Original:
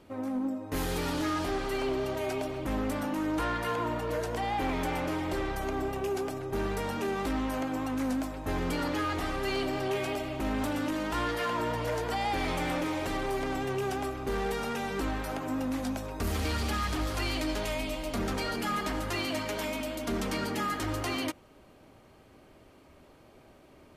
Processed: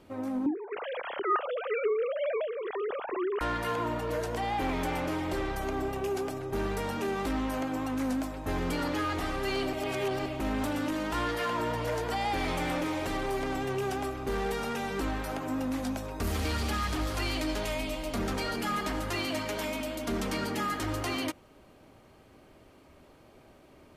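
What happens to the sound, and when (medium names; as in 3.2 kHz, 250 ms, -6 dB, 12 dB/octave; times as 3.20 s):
0.46–3.41 s: formants replaced by sine waves
9.73–10.26 s: reverse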